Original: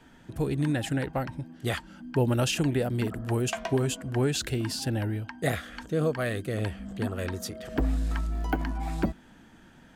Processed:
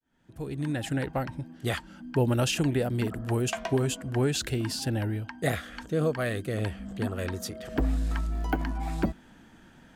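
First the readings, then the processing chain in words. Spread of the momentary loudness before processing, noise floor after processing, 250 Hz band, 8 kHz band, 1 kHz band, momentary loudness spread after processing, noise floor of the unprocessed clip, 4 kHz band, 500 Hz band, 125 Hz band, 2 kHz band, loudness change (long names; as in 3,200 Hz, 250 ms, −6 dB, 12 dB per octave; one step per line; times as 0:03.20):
7 LU, −55 dBFS, −0.5 dB, 0.0 dB, 0.0 dB, 8 LU, −54 dBFS, 0.0 dB, 0.0 dB, −0.5 dB, 0.0 dB, 0.0 dB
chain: fade in at the beginning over 1.04 s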